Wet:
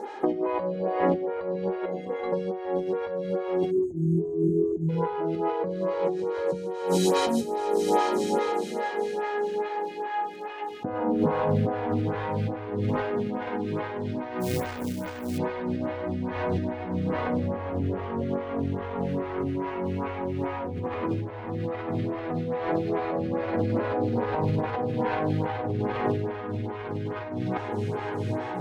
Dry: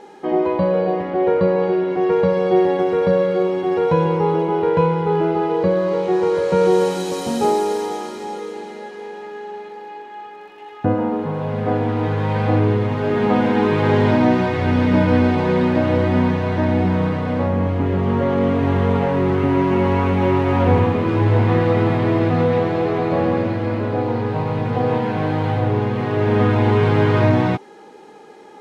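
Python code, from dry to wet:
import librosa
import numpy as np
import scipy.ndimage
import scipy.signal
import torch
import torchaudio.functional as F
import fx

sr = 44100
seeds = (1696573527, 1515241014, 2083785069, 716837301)

y = fx.stiff_resonator(x, sr, f0_hz=240.0, decay_s=0.28, stiffness=0.03, at=(1.84, 2.32), fade=0.02)
y = y + 10.0 ** (-18.5 / 20.0) * np.pad(y, (int(1062 * sr / 1000.0), 0))[:len(y)]
y = fx.spec_erase(y, sr, start_s=3.71, length_s=1.18, low_hz=430.0, high_hz=6200.0)
y = fx.quant_companded(y, sr, bits=4, at=(14.4, 15.37), fade=0.02)
y = fx.over_compress(y, sr, threshold_db=-25.0, ratio=-1.0)
y = fx.stagger_phaser(y, sr, hz=2.4)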